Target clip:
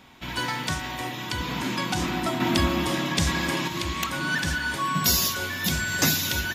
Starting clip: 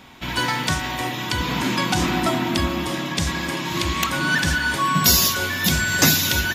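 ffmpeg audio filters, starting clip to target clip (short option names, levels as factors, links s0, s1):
-filter_complex "[0:a]asettb=1/sr,asplit=3[s0][s1][s2];[s0]atrim=end=2.404[s3];[s1]atrim=start=2.4:end=3.68,asetpts=PTS-STARTPTS,afade=t=in:d=0.004:c=qsin,afade=t=out:st=1.276:d=0.004:c=qsin,acontrast=45[s4];[s2]atrim=start=3.676[s5];[s3][s4]acrossfade=d=0.004:c1=hsin:c2=qsin[s6];[s6][s5]acrossfade=d=0.004:c1=qsin:c2=hsin,volume=0.501"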